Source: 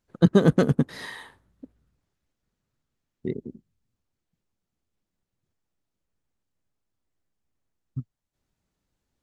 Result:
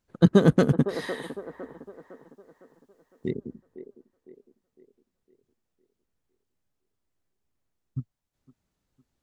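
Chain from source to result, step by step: 1.22–3.29 s: treble shelf 2.5 kHz -> 3.3 kHz +11 dB; on a send: feedback echo behind a band-pass 507 ms, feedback 43%, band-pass 680 Hz, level -9 dB

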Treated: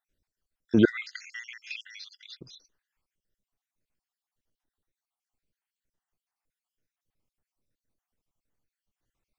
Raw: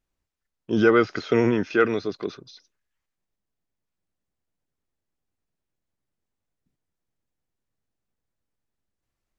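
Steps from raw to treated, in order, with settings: random holes in the spectrogram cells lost 54%; 0.85–2.41 s: steep high-pass 2 kHz 36 dB/octave; trim +2 dB

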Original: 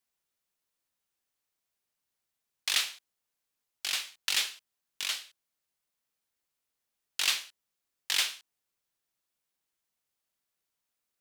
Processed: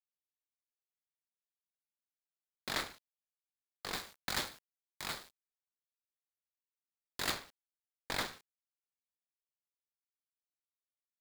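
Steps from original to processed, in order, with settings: median filter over 15 samples; bit crusher 10-bit; 3.93–7.32 s: treble shelf 5.2 kHz +5 dB; trim +1 dB

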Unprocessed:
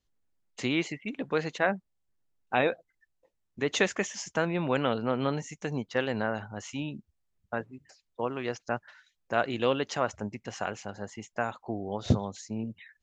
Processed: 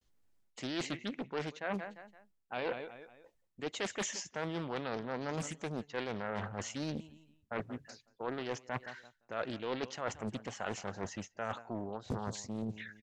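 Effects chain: feedback delay 177 ms, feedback 37%, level -22.5 dB; vibrato 0.6 Hz 82 cents; reverse; compression 8:1, threshold -38 dBFS, peak gain reduction 20 dB; reverse; loudspeaker Doppler distortion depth 0.91 ms; trim +4 dB

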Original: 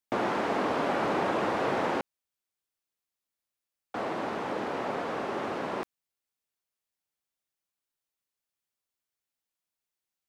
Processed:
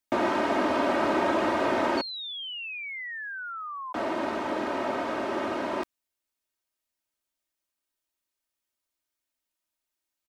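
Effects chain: comb 3.2 ms, depth 63%; painted sound fall, 1.97–3.93 s, 1–4.5 kHz -38 dBFS; trim +1.5 dB

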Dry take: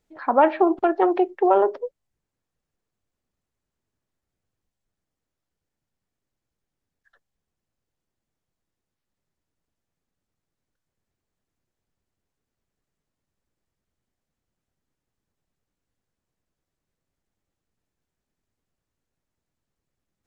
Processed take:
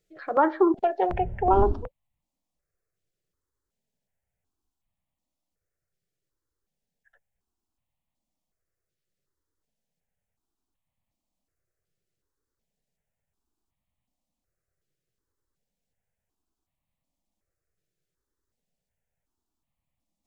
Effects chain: 1.09–1.86 s: wind noise 120 Hz -24 dBFS; stepped phaser 2.7 Hz 250–1500 Hz

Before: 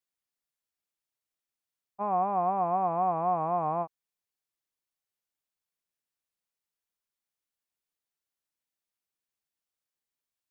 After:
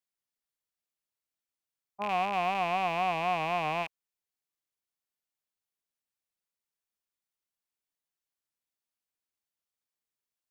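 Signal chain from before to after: rattle on loud lows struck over -56 dBFS, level -23 dBFS; trim -2.5 dB

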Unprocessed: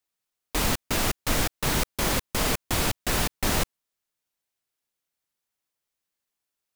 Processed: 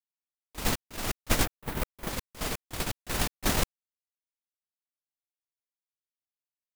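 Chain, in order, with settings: gate -21 dBFS, range -29 dB; 1.44–2.08 s: peaking EQ 6 kHz -14.5 dB -> -6.5 dB 1.9 oct; 2.96–3.58 s: waveshaping leveller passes 1; trim +6 dB

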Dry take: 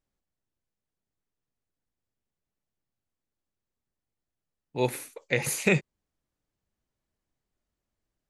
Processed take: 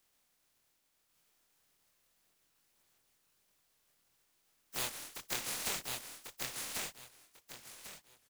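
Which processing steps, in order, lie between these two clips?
spectral contrast reduction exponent 0.11; compression 4:1, threshold -31 dBFS, peak gain reduction 11.5 dB; feedback delay 1094 ms, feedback 16%, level -4 dB; chorus voices 2, 0.86 Hz, delay 24 ms, depth 2.1 ms; three bands compressed up and down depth 40%

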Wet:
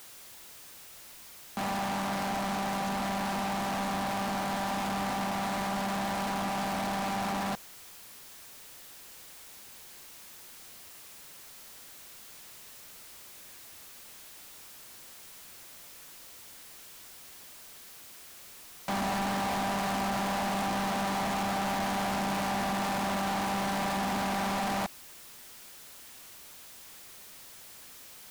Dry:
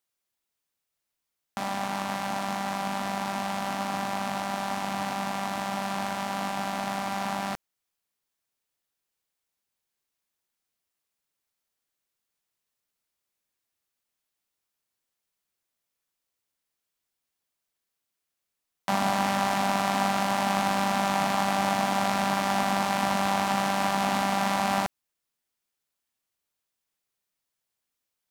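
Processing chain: saturation -25.5 dBFS, distortion -8 dB; power-law waveshaper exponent 0.35; trim -2.5 dB

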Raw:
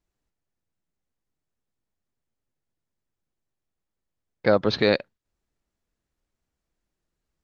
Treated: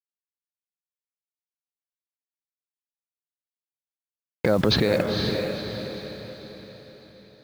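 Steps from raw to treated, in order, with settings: bass shelf 430 Hz +7 dB; in parallel at +2.5 dB: compressor with a negative ratio -28 dBFS, ratio -1; on the sum: peak limiter -9 dBFS, peak gain reduction 7.5 dB; bit crusher 7-bit; echo that smears into a reverb 494 ms, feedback 47%, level -4.5 dB; trim -1 dB

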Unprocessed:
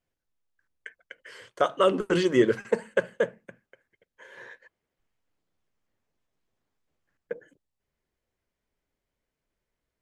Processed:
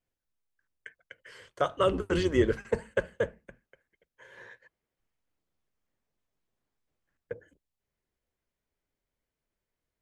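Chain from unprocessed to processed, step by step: octave divider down 2 oct, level -4 dB; trim -4 dB

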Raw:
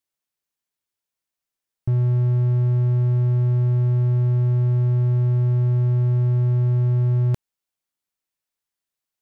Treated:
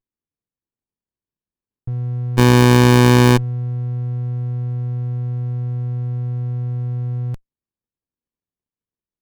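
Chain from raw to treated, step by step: 2.37–3.36 s: formants flattened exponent 0.1; sliding maximum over 65 samples; trim -3.5 dB

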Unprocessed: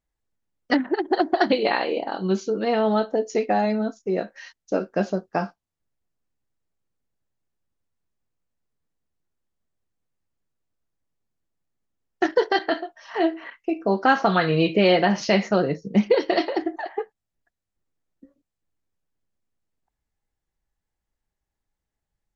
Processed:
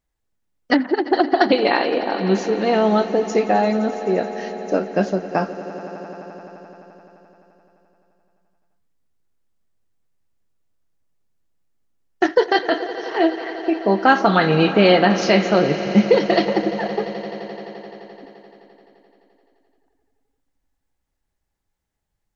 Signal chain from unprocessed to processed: echo with a slow build-up 86 ms, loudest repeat 5, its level -18 dB; trim +4 dB

